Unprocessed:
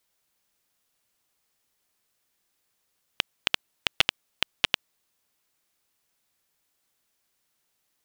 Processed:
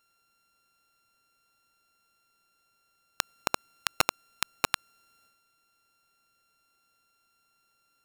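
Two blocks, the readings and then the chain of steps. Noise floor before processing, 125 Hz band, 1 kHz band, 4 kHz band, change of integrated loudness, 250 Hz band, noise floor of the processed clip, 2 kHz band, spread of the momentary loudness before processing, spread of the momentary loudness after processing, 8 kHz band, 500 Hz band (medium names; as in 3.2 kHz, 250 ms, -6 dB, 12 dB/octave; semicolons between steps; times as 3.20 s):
-76 dBFS, -0.5 dB, +5.5 dB, -7.0 dB, -3.0 dB, +1.0 dB, -72 dBFS, -3.5 dB, 7 LU, 7 LU, +6.5 dB, +3.0 dB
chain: sorted samples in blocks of 32 samples; transient shaper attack -6 dB, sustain +6 dB; trim +3.5 dB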